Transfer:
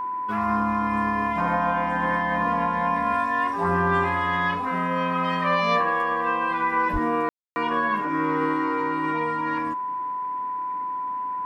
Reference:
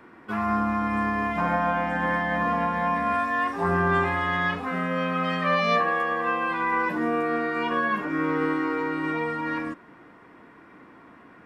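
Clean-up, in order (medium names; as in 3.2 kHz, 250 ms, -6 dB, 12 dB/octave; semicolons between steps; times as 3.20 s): band-stop 1 kHz, Q 30; 6.92–7.04 s: high-pass 140 Hz 24 dB/octave; room tone fill 7.29–7.56 s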